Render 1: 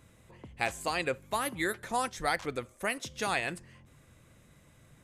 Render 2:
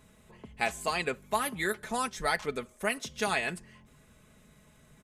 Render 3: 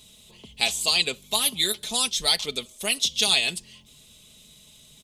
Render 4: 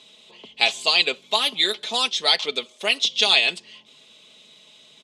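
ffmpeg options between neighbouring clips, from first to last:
-af "aecho=1:1:4.7:0.57"
-af "highshelf=f=2.4k:t=q:w=3:g=13"
-af "highpass=370,lowpass=3.7k,volume=6.5dB"

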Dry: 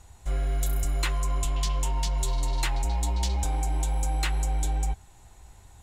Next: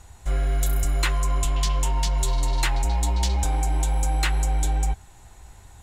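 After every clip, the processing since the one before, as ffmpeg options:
-af "equalizer=f=1.6k:t=o:w=0.77:g=2.5,volume=4dB"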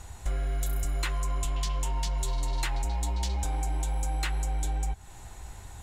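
-af "acompressor=threshold=-30dB:ratio=6,volume=3dB"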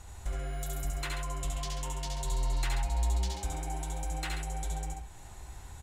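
-af "aecho=1:1:70|83|137:0.631|0.422|0.376,volume=-5dB"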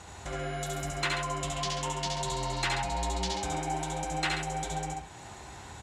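-af "highpass=140,lowpass=6.3k,volume=8.5dB"

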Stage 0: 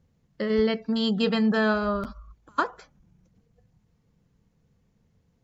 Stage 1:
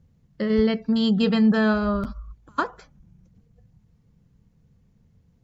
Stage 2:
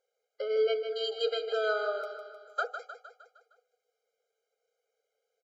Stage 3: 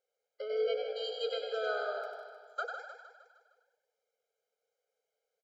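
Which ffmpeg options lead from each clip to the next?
-af "bass=f=250:g=8,treble=f=4k:g=0"
-af "aecho=1:1:154|308|462|616|770|924:0.355|0.192|0.103|0.0559|0.0302|0.0163,afftfilt=real='re*eq(mod(floor(b*sr/1024/410),2),1)':imag='im*eq(mod(floor(b*sr/1024/410),2),1)':win_size=1024:overlap=0.75,volume=-3.5dB"
-filter_complex "[0:a]asplit=6[a][b][c][d][e][f];[b]adelay=96,afreqshift=55,volume=-6dB[g];[c]adelay=192,afreqshift=110,volume=-14.2dB[h];[d]adelay=288,afreqshift=165,volume=-22.4dB[i];[e]adelay=384,afreqshift=220,volume=-30.5dB[j];[f]adelay=480,afreqshift=275,volume=-38.7dB[k];[a][g][h][i][j][k]amix=inputs=6:normalize=0,volume=-5.5dB"

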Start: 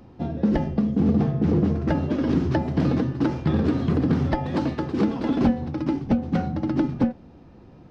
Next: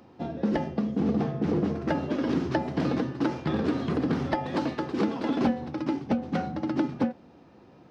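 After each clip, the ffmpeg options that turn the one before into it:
-af "highpass=f=360:p=1"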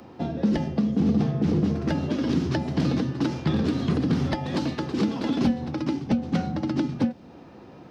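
-filter_complex "[0:a]acrossover=split=230|3000[a][b][c];[b]acompressor=threshold=-40dB:ratio=3[d];[a][d][c]amix=inputs=3:normalize=0,volume=7.5dB"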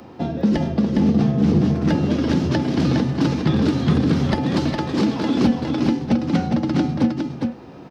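-af "aecho=1:1:410:0.596,volume=4.5dB"

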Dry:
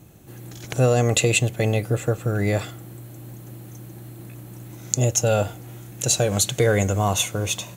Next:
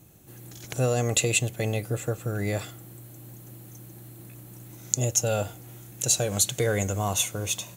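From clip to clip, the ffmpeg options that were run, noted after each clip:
-af "highshelf=f=5.1k:g=7.5,volume=-6.5dB"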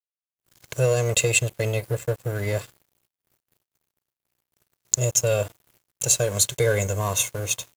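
-af "aecho=1:1:1.9:0.88,aeval=exprs='sgn(val(0))*max(abs(val(0))-0.015,0)':c=same,agate=range=-33dB:threshold=-59dB:ratio=3:detection=peak,volume=1dB"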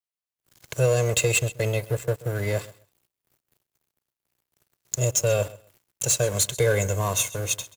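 -filter_complex "[0:a]aecho=1:1:131|262:0.1|0.018,acrossover=split=300[a][b];[b]asoftclip=type=hard:threshold=-16dB[c];[a][c]amix=inputs=2:normalize=0"

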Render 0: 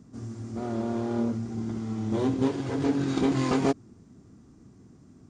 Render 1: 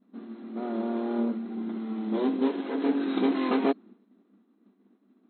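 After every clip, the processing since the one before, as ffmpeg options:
-af "agate=range=-33dB:threshold=-45dB:ratio=3:detection=peak,afftfilt=real='re*between(b*sr/4096,190,4200)':imag='im*between(b*sr/4096,190,4200)':win_size=4096:overlap=0.75"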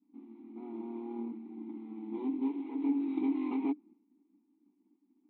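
-filter_complex "[0:a]asplit=3[a][b][c];[a]bandpass=f=300:t=q:w=8,volume=0dB[d];[b]bandpass=f=870:t=q:w=8,volume=-6dB[e];[c]bandpass=f=2.24k:t=q:w=8,volume=-9dB[f];[d][e][f]amix=inputs=3:normalize=0"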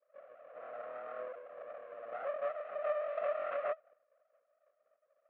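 -af "afreqshift=20,aeval=exprs='abs(val(0))':c=same,highpass=f=330:w=0.5412,highpass=f=330:w=1.3066,equalizer=f=360:t=q:w=4:g=-6,equalizer=f=900:t=q:w=4:g=-7,equalizer=f=1.4k:t=q:w=4:g=6,lowpass=f=2.4k:w=0.5412,lowpass=f=2.4k:w=1.3066,volume=3.5dB"

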